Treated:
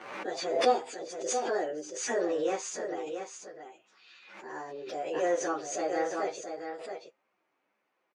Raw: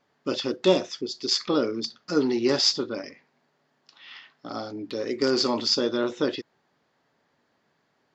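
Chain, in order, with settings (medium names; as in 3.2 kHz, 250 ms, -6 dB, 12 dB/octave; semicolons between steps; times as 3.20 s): frequency-domain pitch shifter +5 st; tone controls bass -12 dB, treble -14 dB; feedback comb 130 Hz, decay 0.18 s, harmonics all, mix 40%; on a send: delay 679 ms -7.5 dB; on the sum: swell ahead of each attack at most 56 dB/s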